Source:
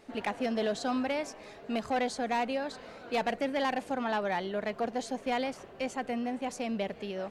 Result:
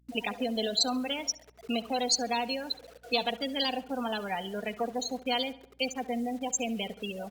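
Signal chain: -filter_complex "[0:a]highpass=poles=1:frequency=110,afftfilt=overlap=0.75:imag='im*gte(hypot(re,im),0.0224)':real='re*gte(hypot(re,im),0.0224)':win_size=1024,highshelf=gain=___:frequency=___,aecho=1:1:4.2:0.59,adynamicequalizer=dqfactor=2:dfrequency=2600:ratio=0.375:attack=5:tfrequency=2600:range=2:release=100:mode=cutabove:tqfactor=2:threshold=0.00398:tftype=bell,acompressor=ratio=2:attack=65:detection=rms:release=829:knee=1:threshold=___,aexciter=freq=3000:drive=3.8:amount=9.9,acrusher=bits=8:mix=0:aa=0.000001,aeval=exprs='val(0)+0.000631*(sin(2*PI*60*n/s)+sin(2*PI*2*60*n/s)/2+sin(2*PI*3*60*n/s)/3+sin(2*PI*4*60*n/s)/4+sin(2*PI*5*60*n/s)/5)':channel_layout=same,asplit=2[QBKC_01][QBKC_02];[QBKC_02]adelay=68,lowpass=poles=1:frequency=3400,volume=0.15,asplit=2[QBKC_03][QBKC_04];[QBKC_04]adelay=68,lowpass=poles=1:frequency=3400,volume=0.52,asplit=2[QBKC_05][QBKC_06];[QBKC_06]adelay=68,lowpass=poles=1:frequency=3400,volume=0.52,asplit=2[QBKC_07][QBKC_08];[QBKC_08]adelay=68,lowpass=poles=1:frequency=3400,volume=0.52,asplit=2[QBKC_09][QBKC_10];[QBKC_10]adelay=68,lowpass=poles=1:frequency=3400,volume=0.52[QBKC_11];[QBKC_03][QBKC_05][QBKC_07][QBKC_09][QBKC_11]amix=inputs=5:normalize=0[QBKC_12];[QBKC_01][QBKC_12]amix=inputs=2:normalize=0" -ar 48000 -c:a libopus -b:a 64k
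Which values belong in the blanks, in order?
10.5, 5700, 0.0282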